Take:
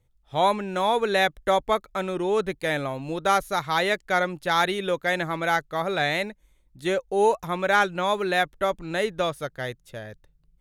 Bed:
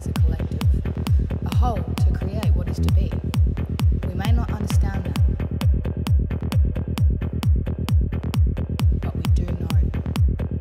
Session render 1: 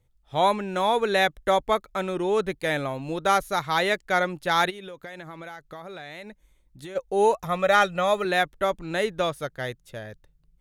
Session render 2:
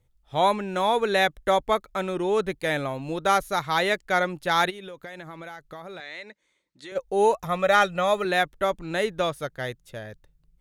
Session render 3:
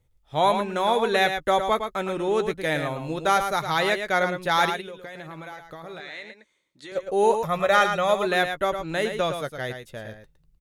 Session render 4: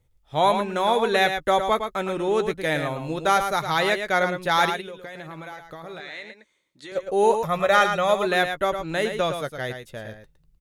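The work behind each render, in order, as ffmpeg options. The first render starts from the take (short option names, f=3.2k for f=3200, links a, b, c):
-filter_complex "[0:a]asplit=3[a][b][c];[a]afade=t=out:st=4.69:d=0.02[d];[b]acompressor=threshold=-35dB:ratio=16:attack=3.2:release=140:knee=1:detection=peak,afade=t=in:st=4.69:d=0.02,afade=t=out:st=6.95:d=0.02[e];[c]afade=t=in:st=6.95:d=0.02[f];[d][e][f]amix=inputs=3:normalize=0,asettb=1/sr,asplit=3[g][h][i];[g]atrim=end=7.454[j];[h]atrim=start=7.45:end=8.25,asetpts=PTS-STARTPTS,afade=t=in:d=0.004:c=qsin,afade=t=out:st=0.796:d=0.004:c=qsin,aecho=1:1:1.6:0.65,atrim=end_sample=35280[k];[i]atrim=start=8.246[l];[j][k]acrossfade=d=0.004:c1=hsin:c2=qsin[m];[m][l]acrossfade=d=0.004:c1=qsin:c2=hsin"
-filter_complex "[0:a]asettb=1/sr,asplit=3[a][b][c];[a]atrim=end=6.004[d];[b]atrim=start=6:end=6.92,asetpts=PTS-STARTPTS,afade=t=in:d=0.004:c=qsin,afade=t=out:st=0.916:d=0.004:c=qsin,highpass=340,equalizer=f=750:t=q:w=4:g=-7,equalizer=f=2k:t=q:w=4:g=5,equalizer=f=4.2k:t=q:w=4:g=5,lowpass=f=8.1k:w=0.5412,lowpass=f=8.1k:w=1.3066[e];[c]atrim=start=6.916[f];[d][e]acrossfade=d=0.004:c1=hsin:c2=qsin[g];[g][f]acrossfade=d=0.004:c1=qsin:c2=hsin"
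-filter_complex "[0:a]asplit=2[a][b];[b]adelay=13,volume=-13.5dB[c];[a][c]amix=inputs=2:normalize=0,aecho=1:1:111:0.422"
-af "volume=1dB"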